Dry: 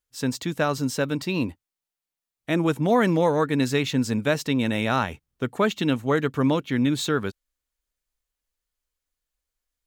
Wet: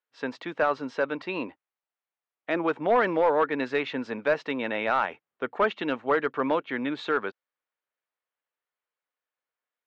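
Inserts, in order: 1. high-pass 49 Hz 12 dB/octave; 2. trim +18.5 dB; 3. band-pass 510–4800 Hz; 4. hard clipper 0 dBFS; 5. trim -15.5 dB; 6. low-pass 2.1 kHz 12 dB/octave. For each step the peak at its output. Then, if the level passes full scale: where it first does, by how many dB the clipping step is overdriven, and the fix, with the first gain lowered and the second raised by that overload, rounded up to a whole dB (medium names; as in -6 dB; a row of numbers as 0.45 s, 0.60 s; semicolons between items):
-7.5 dBFS, +11.0 dBFS, +9.0 dBFS, 0.0 dBFS, -15.5 dBFS, -15.0 dBFS; step 2, 9.0 dB; step 2 +9.5 dB, step 5 -6.5 dB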